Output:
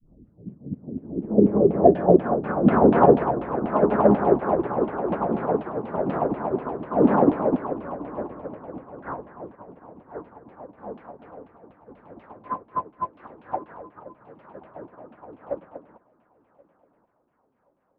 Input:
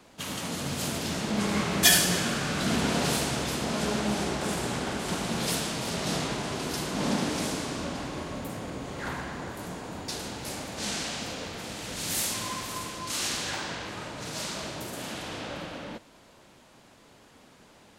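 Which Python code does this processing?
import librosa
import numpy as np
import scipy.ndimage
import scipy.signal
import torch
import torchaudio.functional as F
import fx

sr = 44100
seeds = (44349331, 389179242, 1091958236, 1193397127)

p1 = fx.tape_start_head(x, sr, length_s=0.64)
p2 = fx.filter_lfo_lowpass(p1, sr, shape='saw_down', hz=4.1, low_hz=230.0, high_hz=3200.0, q=3.4)
p3 = fx.dynamic_eq(p2, sr, hz=460.0, q=0.73, threshold_db=-39.0, ratio=4.0, max_db=7)
p4 = fx.filter_sweep_lowpass(p3, sr, from_hz=220.0, to_hz=1100.0, start_s=0.77, end_s=2.55, q=1.5)
p5 = p4 + fx.echo_feedback(p4, sr, ms=1078, feedback_pct=33, wet_db=-11, dry=0)
p6 = fx.upward_expand(p5, sr, threshold_db=-35.0, expansion=2.5)
y = F.gain(torch.from_numpy(p6), 7.0).numpy()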